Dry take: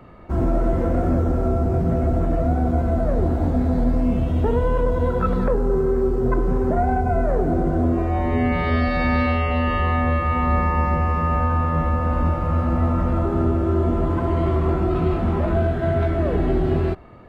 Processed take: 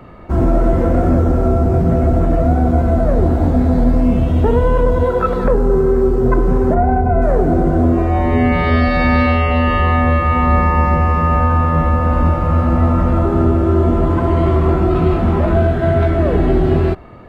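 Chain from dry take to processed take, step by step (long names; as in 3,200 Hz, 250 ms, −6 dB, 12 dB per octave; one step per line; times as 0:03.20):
0:05.03–0:05.45: low shelf with overshoot 290 Hz −6 dB, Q 1.5
0:06.74–0:07.22: low-pass filter 1,400 Hz 6 dB per octave
level +6.5 dB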